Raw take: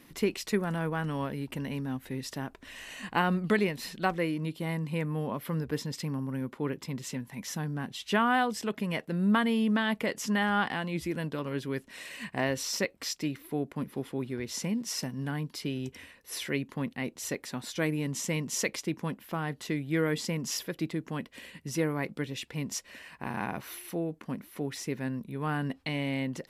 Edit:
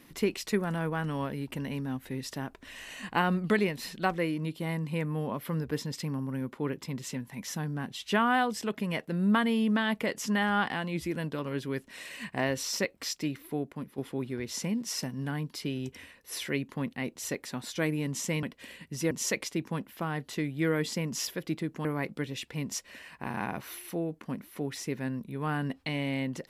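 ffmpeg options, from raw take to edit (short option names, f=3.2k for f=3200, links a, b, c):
-filter_complex "[0:a]asplit=5[a][b][c][d][e];[a]atrim=end=13.98,asetpts=PTS-STARTPTS,afade=t=out:st=13.49:d=0.49:silence=0.398107[f];[b]atrim=start=13.98:end=18.432,asetpts=PTS-STARTPTS,afade=t=in:d=0.004:c=hsin:silence=0.398107[g];[c]atrim=start=21.168:end=21.852[h];[d]atrim=start=18.428:end=21.172[i];[e]atrim=start=21.848[j];[f][g]concat=n=2:v=0:a=1[k];[k][h]acrossfade=d=0.004:c1=hsin:c2=hsin[l];[l][i]acrossfade=d=0.004:c1=hsin:c2=hsin[m];[m][j]acrossfade=d=0.004:c1=hsin:c2=hsin"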